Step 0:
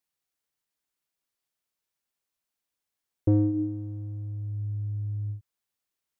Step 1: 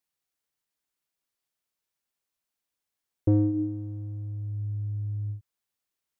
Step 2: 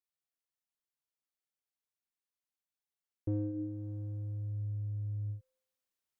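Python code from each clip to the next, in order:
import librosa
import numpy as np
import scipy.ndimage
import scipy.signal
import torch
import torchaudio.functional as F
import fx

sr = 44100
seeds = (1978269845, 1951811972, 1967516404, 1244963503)

y1 = x
y2 = fx.dynamic_eq(y1, sr, hz=770.0, q=0.9, threshold_db=-43.0, ratio=4.0, max_db=-4)
y2 = fx.rider(y2, sr, range_db=4, speed_s=0.5)
y2 = fx.comb_fb(y2, sr, f0_hz=260.0, decay_s=0.91, harmonics='all', damping=0.0, mix_pct=60)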